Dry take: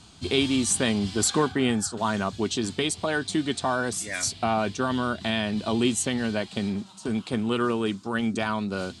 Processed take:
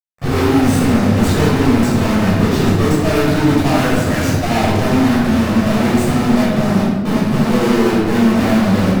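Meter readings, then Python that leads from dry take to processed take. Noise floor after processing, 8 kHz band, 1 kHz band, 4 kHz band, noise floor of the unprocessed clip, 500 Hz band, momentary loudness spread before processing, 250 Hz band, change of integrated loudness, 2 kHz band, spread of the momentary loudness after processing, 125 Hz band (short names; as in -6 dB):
-18 dBFS, 0.0 dB, +10.0 dB, +4.5 dB, -48 dBFS, +11.0 dB, 6 LU, +14.0 dB, +12.0 dB, +9.0 dB, 3 LU, +17.5 dB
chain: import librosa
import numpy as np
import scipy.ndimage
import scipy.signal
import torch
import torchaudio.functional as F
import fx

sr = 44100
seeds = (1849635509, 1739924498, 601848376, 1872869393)

y = scipy.signal.medfilt(x, 41)
y = scipy.signal.sosfilt(scipy.signal.butter(4, 67.0, 'highpass', fs=sr, output='sos'), y)
y = fx.vibrato(y, sr, rate_hz=4.7, depth_cents=58.0)
y = fx.fuzz(y, sr, gain_db=48.0, gate_db=-46.0)
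y = fx.room_shoebox(y, sr, seeds[0], volume_m3=890.0, walls='mixed', distance_m=6.0)
y = y * librosa.db_to_amplitude(-11.0)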